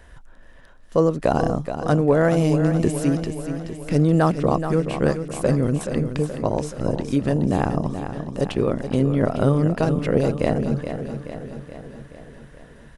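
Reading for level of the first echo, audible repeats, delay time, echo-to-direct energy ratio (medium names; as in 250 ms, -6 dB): -9.0 dB, 6, 426 ms, -7.0 dB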